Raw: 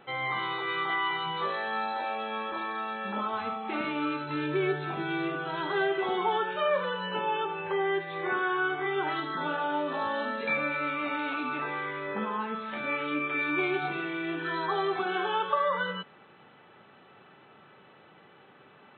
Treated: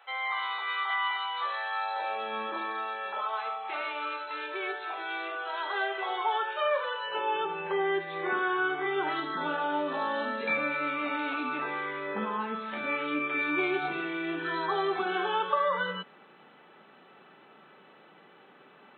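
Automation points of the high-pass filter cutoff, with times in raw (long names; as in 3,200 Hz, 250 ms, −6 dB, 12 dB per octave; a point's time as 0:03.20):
high-pass filter 24 dB per octave
0:01.79 690 Hz
0:02.44 190 Hz
0:03.19 520 Hz
0:07.04 520 Hz
0:07.49 170 Hz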